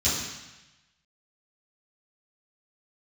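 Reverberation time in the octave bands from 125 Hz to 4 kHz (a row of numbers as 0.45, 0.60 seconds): 1.2, 1.0, 0.95, 1.1, 1.2, 1.1 seconds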